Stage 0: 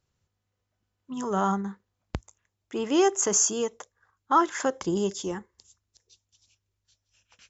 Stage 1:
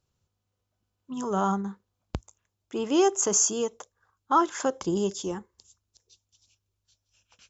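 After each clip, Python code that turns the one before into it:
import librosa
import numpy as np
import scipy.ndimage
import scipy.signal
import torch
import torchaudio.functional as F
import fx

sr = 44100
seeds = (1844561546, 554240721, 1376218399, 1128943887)

y = fx.peak_eq(x, sr, hz=1900.0, db=-7.5, octaves=0.49)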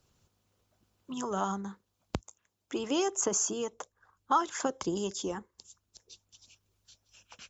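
y = fx.hpss(x, sr, part='harmonic', gain_db=-8)
y = fx.band_squash(y, sr, depth_pct=40)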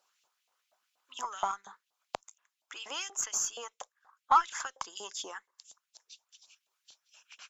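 y = fx.filter_lfo_highpass(x, sr, shape='saw_up', hz=4.2, low_hz=680.0, high_hz=3100.0, q=2.2)
y = fx.cheby_harmonics(y, sr, harmonics=(6,), levels_db=(-32,), full_scale_db=-9.5)
y = F.gain(torch.from_numpy(y), -2.0).numpy()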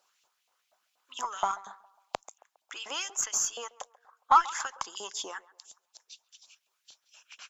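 y = fx.echo_banded(x, sr, ms=136, feedback_pct=46, hz=750.0, wet_db=-18.5)
y = F.gain(torch.from_numpy(y), 3.0).numpy()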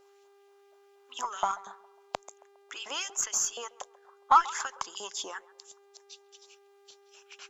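y = fx.dmg_buzz(x, sr, base_hz=400.0, harmonics=30, level_db=-61.0, tilt_db=-9, odd_only=False)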